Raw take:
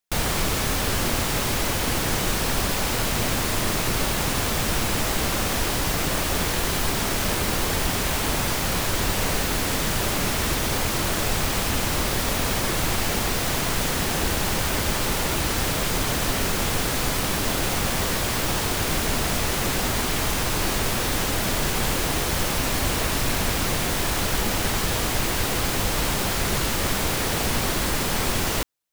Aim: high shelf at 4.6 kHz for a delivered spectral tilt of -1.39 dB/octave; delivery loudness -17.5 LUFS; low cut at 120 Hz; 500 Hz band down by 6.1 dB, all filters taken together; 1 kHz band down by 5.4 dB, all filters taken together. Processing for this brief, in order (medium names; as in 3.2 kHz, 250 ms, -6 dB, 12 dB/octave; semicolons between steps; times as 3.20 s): high-pass 120 Hz; peaking EQ 500 Hz -6.5 dB; peaking EQ 1 kHz -5.5 dB; treble shelf 4.6 kHz +6.5 dB; trim +3 dB